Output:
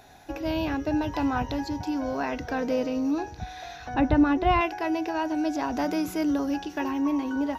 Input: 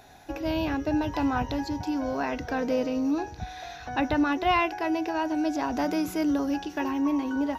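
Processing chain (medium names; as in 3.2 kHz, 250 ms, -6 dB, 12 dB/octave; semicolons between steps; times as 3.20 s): 3.94–4.61 s: tilt EQ -2.5 dB/octave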